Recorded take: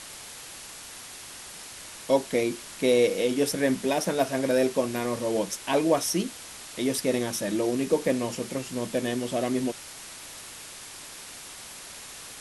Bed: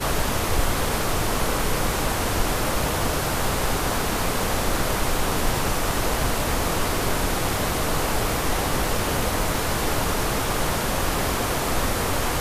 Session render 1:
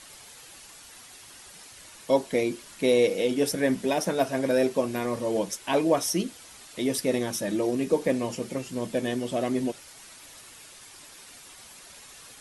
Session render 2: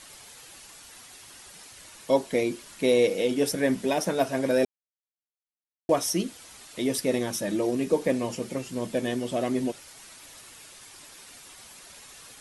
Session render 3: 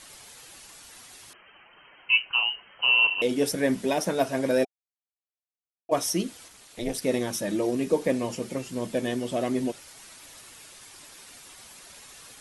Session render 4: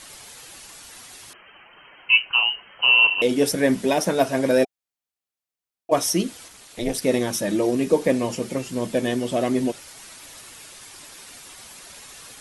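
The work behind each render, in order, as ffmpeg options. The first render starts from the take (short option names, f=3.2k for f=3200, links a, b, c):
-af "afftdn=nr=8:nf=-43"
-filter_complex "[0:a]asplit=3[a][b][c];[a]atrim=end=4.65,asetpts=PTS-STARTPTS,afade=t=out:st=4.646:d=0.004:c=hsin[d];[b]atrim=start=4.65:end=5.89,asetpts=PTS-STARTPTS,volume=0[e];[c]atrim=start=5.89,asetpts=PTS-STARTPTS,afade=t=in:d=0.004:c=hsin[f];[d][e][f]concat=n=3:v=0:a=1"
-filter_complex "[0:a]asettb=1/sr,asplit=3[a][b][c];[a]atrim=end=1.334[d];[b]atrim=start=1.33:end=3.22,asetpts=PTS-STARTPTS,afade=t=in:d=0.004:c=qsin,afade=t=out:st=1.886:d=0.004:c=qsin,lowpass=f=2.7k:t=q:w=0.5098,lowpass=f=2.7k:t=q:w=0.6013,lowpass=f=2.7k:t=q:w=0.9,lowpass=f=2.7k:t=q:w=2.563,afreqshift=-3200[e];[c]atrim=start=3.216[f];[d][e]acrossfade=d=0.004:c1=hsin:c2=qsin[g];[g][f]acrossfade=d=0.004:c1=qsin:c2=hsin,asplit=3[h][i][j];[h]afade=t=out:st=4.63:d=0.02[k];[i]asplit=3[l][m][n];[l]bandpass=f=730:t=q:w=8,volume=0dB[o];[m]bandpass=f=1.09k:t=q:w=8,volume=-6dB[p];[n]bandpass=f=2.44k:t=q:w=8,volume=-9dB[q];[o][p][q]amix=inputs=3:normalize=0,afade=t=in:st=4.63:d=0.02,afade=t=out:st=5.91:d=0.02[r];[j]afade=t=in:st=5.91:d=0.02[s];[k][r][s]amix=inputs=3:normalize=0,asettb=1/sr,asplit=3[t][u][v];[t]atrim=end=6.484[w];[u]atrim=start=6.48:end=7.02,asetpts=PTS-STARTPTS,afade=t=in:d=0.004:c=qsin,afade=t=out:st=0.536:d=0.004:c=qsin,tremolo=f=240:d=0.919[x];[v]atrim=start=7.016[y];[w][x]acrossfade=d=0.004:c1=hsin:c2=qsin[z];[z][y]acrossfade=d=0.004:c1=qsin:c2=hsin"
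-af "volume=5dB"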